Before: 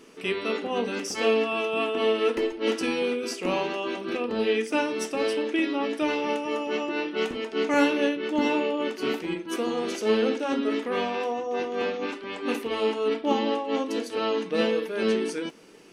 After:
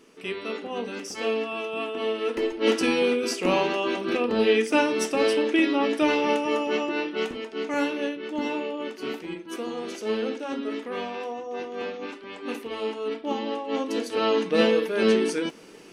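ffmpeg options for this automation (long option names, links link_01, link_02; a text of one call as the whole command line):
ffmpeg -i in.wav -af "volume=12.5dB,afade=type=in:start_time=2.26:duration=0.42:silence=0.398107,afade=type=out:start_time=6.48:duration=1.09:silence=0.375837,afade=type=in:start_time=13.47:duration=0.89:silence=0.375837" out.wav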